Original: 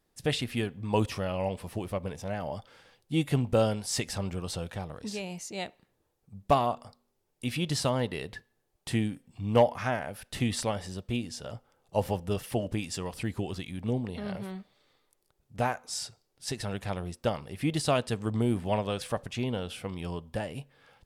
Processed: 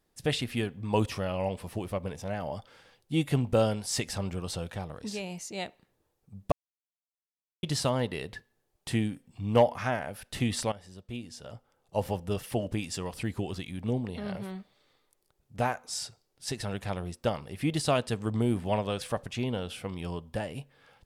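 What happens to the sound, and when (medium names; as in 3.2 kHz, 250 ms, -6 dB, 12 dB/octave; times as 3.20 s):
6.52–7.63 s: mute
10.72–13.01 s: fade in equal-power, from -14 dB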